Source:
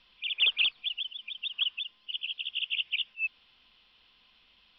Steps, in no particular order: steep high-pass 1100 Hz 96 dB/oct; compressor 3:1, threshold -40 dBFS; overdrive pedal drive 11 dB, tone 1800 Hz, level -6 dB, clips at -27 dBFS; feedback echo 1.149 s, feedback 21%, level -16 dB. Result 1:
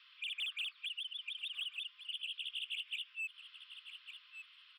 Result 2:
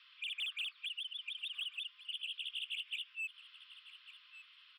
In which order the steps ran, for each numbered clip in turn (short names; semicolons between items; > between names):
steep high-pass > overdrive pedal > feedback echo > compressor; steep high-pass > overdrive pedal > compressor > feedback echo